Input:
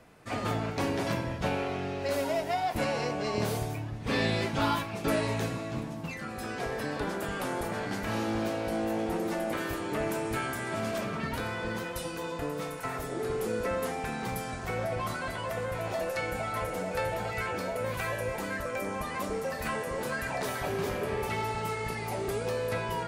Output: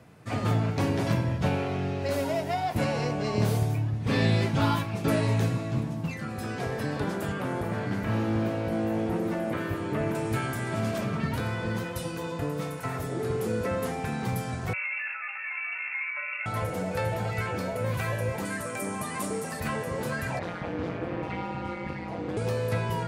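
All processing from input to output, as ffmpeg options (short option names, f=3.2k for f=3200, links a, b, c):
-filter_complex "[0:a]asettb=1/sr,asplit=3[a][b][c];[a]atrim=end=7.324[d];[b]atrim=start=7.32:end=10.15,asetpts=PTS-STARTPTS,afade=t=in:d=0.004:c=qsin,afade=t=out:st=2.826:d=0.004:c=qsin,acrossover=split=3100[e][f];[f]acompressor=threshold=-55dB:ratio=4:attack=1:release=60[g];[e][g]amix=inputs=2:normalize=0,highshelf=f=12k:g=5,bandreject=f=800:w=14[h];[c]atrim=start=10.146[i];[d][h]acrossfade=d=0.004:c1=hsin:c2=qsin[j];[j][i]acrossfade=d=0.004:c1=qsin:c2=hsin,asettb=1/sr,asplit=3[k][l][m];[k]atrim=end=14.734[n];[l]atrim=start=14.73:end=16.46,asetpts=PTS-STARTPTS,afade=t=in:d=0.004:c=qsin,afade=t=out:st=1.726:d=0.004:c=qsin,lowpass=f=2.4k:t=q:w=0.5098,lowpass=f=2.4k:t=q:w=0.6013,lowpass=f=2.4k:t=q:w=0.9,lowpass=f=2.4k:t=q:w=2.563,afreqshift=-2800,highpass=1.2k[o];[m]atrim=start=16.456[p];[n][o]acrossfade=d=0.004:c1=hsin:c2=qsin[q];[q][p]acrossfade=d=0.004:c1=qsin:c2=hsin,asettb=1/sr,asplit=3[r][s][t];[r]atrim=end=18.454[u];[s]atrim=start=18.45:end=19.6,asetpts=PTS-STARTPTS,afade=t=in:d=0.004:c=qsin,afade=t=out:st=1.146:d=0.004:c=qsin,highpass=140,equalizer=f=9k:t=o:w=0.68:g=13,bandreject=f=530:w=8.5[v];[t]atrim=start=19.596[w];[u][v]acrossfade=d=0.004:c1=hsin:c2=qsin[x];[x][w]acrossfade=d=0.004:c1=qsin:c2=hsin,asettb=1/sr,asplit=3[y][z][aa];[y]atrim=end=20.394[ab];[z]atrim=start=20.39:end=22.37,asetpts=PTS-STARTPTS,afade=t=in:d=0.004:c=qsin,afade=t=out:st=1.976:d=0.004:c=qsin,lowpass=3.3k,aeval=exprs='val(0)*sin(2*PI*89*n/s)':c=same[ac];[aa]atrim=start=22.366[ad];[ab][ac]acrossfade=d=0.004:c1=hsin:c2=qsin[ae];[ae][ad]acrossfade=d=0.004:c1=qsin:c2=hsin,highpass=75,equalizer=f=110:w=0.7:g=10.5"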